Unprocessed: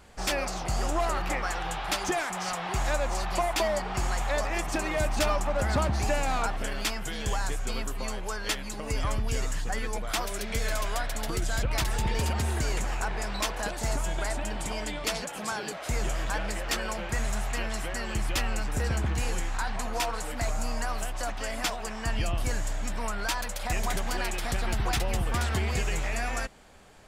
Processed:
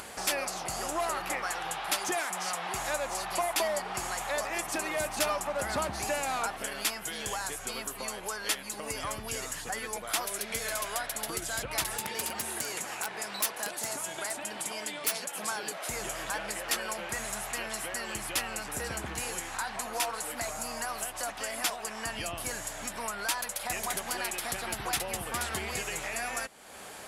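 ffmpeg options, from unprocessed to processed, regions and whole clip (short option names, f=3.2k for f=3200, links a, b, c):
-filter_complex "[0:a]asettb=1/sr,asplit=3[a][b][c];[a]atrim=end=11.974[d];[b]atrim=start=11.97:end=15.38,asetpts=PTS-STARTPTS,afade=t=in:d=0.004:c=qsin,afade=t=out:st=3.406:d=0.004:c=qsin,highpass=150,equalizer=f=690:w=0.52:g=-2.5,aeval=exprs='(mod(13.3*val(0)+1,2)-1)/13.3':c=same[e];[c]atrim=start=15.376[f];[d][e]acrossfade=d=0.004:c1=hsin:c2=qsin[g];[g][f]acrossfade=d=0.004:c1=qsin:c2=hsin,highpass=f=410:p=1,equalizer=f=11k:t=o:w=0.57:g=11,acompressor=mode=upward:threshold=-31dB:ratio=2.5,volume=-1.5dB"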